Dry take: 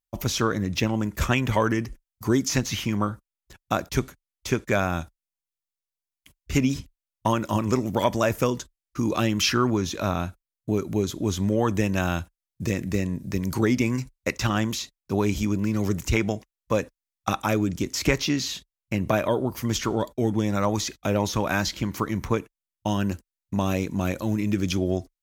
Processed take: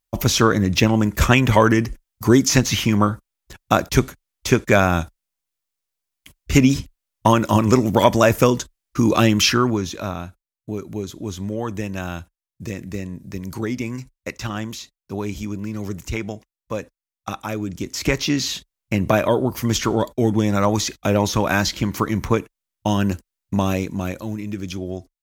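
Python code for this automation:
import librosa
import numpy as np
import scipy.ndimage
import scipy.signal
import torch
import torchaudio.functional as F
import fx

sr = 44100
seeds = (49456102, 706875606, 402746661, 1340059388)

y = fx.gain(x, sr, db=fx.line((9.29, 8.0), (10.24, -3.5), (17.54, -3.5), (18.47, 5.5), (23.55, 5.5), (24.44, -4.0)))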